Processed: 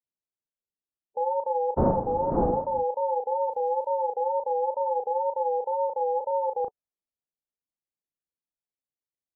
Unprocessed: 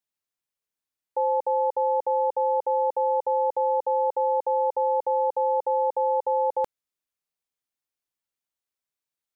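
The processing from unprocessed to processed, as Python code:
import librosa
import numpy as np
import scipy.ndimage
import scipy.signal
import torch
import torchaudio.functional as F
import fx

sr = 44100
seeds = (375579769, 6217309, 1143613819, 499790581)

y = fx.spec_quant(x, sr, step_db=15)
y = fx.dmg_wind(y, sr, seeds[0], corner_hz=500.0, level_db=-19.0, at=(1.76, 2.79), fade=0.02)
y = fx.env_lowpass(y, sr, base_hz=540.0, full_db=-23.5)
y = scipy.signal.sosfilt(scipy.signal.butter(4, 1000.0, 'lowpass', fs=sr, output='sos'), y)
y = fx.dmg_crackle(y, sr, seeds[1], per_s=63.0, level_db=-54.0, at=(3.47, 3.88), fade=0.02)
y = fx.wow_flutter(y, sr, seeds[2], rate_hz=2.1, depth_cents=97.0)
y = fx.doubler(y, sr, ms=36.0, db=-6)
y = F.gain(torch.from_numpy(y), -3.0).numpy()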